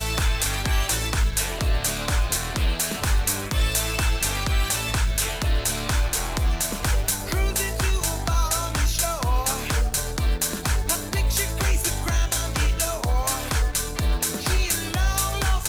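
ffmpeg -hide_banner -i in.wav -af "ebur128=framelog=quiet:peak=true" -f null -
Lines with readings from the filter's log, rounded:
Integrated loudness:
  I:         -23.8 LUFS
  Threshold: -33.8 LUFS
Loudness range:
  LRA:         0.5 LU
  Threshold: -43.8 LUFS
  LRA low:   -24.1 LUFS
  LRA high:  -23.5 LUFS
True peak:
  Peak:       -7.7 dBFS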